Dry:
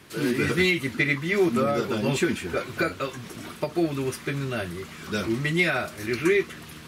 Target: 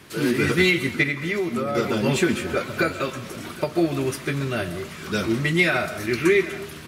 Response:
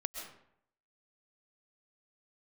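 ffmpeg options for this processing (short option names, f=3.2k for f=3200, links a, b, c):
-filter_complex "[0:a]aecho=1:1:777:0.112,asplit=2[a][b];[1:a]atrim=start_sample=2205[c];[b][c]afir=irnorm=-1:irlink=0,volume=-6dB[d];[a][d]amix=inputs=2:normalize=0,asettb=1/sr,asplit=3[e][f][g];[e]atrim=end=1.034[h];[f]atrim=start=1.03:end=1.75,asetpts=PTS-STARTPTS,afade=t=in:d=0.004:c=qsin,afade=t=out:st=0.716:d=0.004:c=qsin,acompressor=threshold=-22dB:ratio=6[i];[g]atrim=start=1.746[j];[h][i]acrossfade=d=0.004:c1=hsin:c2=qsin[k];[k][j]acrossfade=d=0.004:c1=qsin:c2=hsin"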